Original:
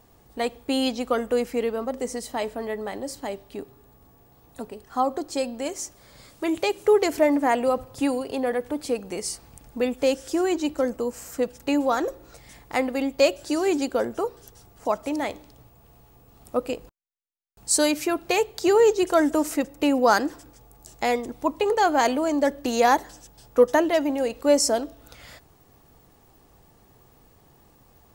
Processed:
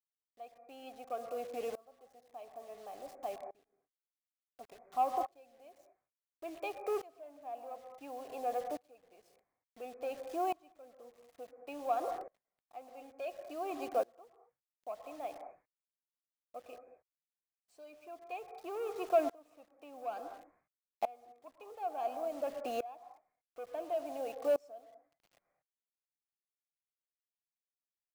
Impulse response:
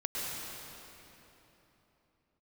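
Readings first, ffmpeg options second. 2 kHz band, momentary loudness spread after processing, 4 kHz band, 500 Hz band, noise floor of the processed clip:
−23.0 dB, 20 LU, −24.5 dB, −16.0 dB, below −85 dBFS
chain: -filter_complex "[0:a]agate=range=-33dB:threshold=-43dB:ratio=3:detection=peak,asoftclip=type=tanh:threshold=-16.5dB,asplit=3[link_01][link_02][link_03];[link_01]bandpass=frequency=730:width_type=q:width=8,volume=0dB[link_04];[link_02]bandpass=frequency=1090:width_type=q:width=8,volume=-6dB[link_05];[link_03]bandpass=frequency=2440:width_type=q:width=8,volume=-9dB[link_06];[link_04][link_05][link_06]amix=inputs=3:normalize=0,acrusher=bits=8:mix=0:aa=0.000001,asplit=2[link_07][link_08];[link_08]asuperstop=centerf=4000:order=20:qfactor=1[link_09];[1:a]atrim=start_sample=2205,afade=type=out:start_time=0.29:duration=0.01,atrim=end_sample=13230,lowpass=2000[link_10];[link_09][link_10]afir=irnorm=-1:irlink=0,volume=-10dB[link_11];[link_07][link_11]amix=inputs=2:normalize=0,aeval=exprs='val(0)*pow(10,-26*if(lt(mod(-0.57*n/s,1),2*abs(-0.57)/1000),1-mod(-0.57*n/s,1)/(2*abs(-0.57)/1000),(mod(-0.57*n/s,1)-2*abs(-0.57)/1000)/(1-2*abs(-0.57)/1000))/20)':channel_layout=same,volume=3.5dB"

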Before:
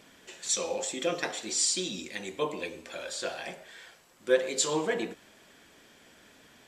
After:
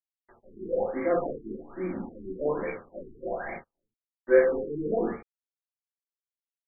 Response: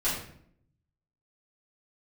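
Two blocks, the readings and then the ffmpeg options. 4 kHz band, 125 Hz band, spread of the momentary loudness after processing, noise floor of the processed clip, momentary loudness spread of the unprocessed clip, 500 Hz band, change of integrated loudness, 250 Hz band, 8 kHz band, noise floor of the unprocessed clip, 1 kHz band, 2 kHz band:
below −40 dB, +4.0 dB, 19 LU, below −85 dBFS, 17 LU, +5.0 dB, +1.5 dB, +4.5 dB, below −40 dB, −58 dBFS, +1.5 dB, −1.0 dB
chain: -filter_complex "[0:a]acrusher=bits=5:mix=0:aa=0.5[link_01];[1:a]atrim=start_sample=2205,atrim=end_sample=3528,asetrate=35721,aresample=44100[link_02];[link_01][link_02]afir=irnorm=-1:irlink=0,afftfilt=real='re*lt(b*sr/1024,420*pow(2400/420,0.5+0.5*sin(2*PI*1.2*pts/sr)))':imag='im*lt(b*sr/1024,420*pow(2400/420,0.5+0.5*sin(2*PI*1.2*pts/sr)))':win_size=1024:overlap=0.75,volume=-5dB"

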